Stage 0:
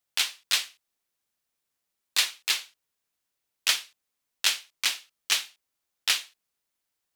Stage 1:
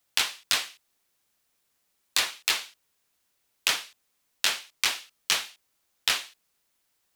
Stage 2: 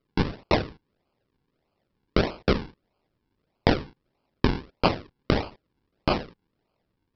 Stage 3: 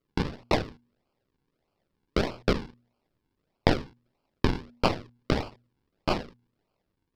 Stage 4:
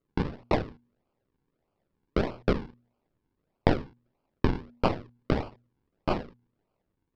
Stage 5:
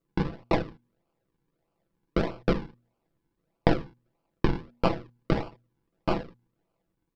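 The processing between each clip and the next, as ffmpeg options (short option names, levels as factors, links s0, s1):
-filter_complex "[0:a]acrossover=split=220|1500[s0][s1][s2];[s1]asoftclip=type=hard:threshold=0.0141[s3];[s2]acompressor=threshold=0.0282:ratio=10[s4];[s0][s3][s4]amix=inputs=3:normalize=0,volume=2.66"
-af "bandreject=f=1400:w=6.3,aresample=11025,acrusher=samples=12:mix=1:aa=0.000001:lfo=1:lforange=12:lforate=1.6,aresample=44100,volume=1.78"
-af "aeval=exprs='if(lt(val(0),0),0.447*val(0),val(0))':c=same,bandreject=f=119.9:t=h:w=4,bandreject=f=239.8:t=h:w=4"
-af "lowpass=f=1700:p=1"
-af "aecho=1:1:6:0.47"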